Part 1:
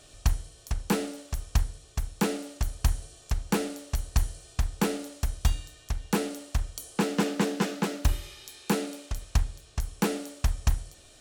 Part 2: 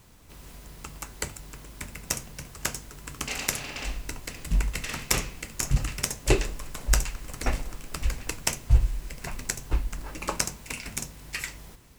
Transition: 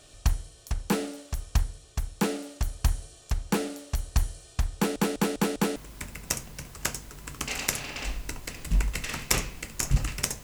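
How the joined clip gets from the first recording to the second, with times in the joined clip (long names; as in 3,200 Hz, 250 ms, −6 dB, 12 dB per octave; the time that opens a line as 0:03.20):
part 1
0:04.76: stutter in place 0.20 s, 5 plays
0:05.76: continue with part 2 from 0:01.56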